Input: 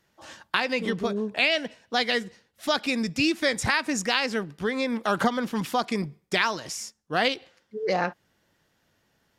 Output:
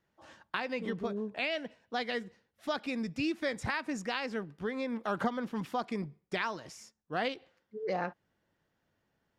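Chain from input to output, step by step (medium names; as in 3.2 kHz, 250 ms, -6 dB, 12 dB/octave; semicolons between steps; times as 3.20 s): treble shelf 3.1 kHz -11 dB; trim -7.5 dB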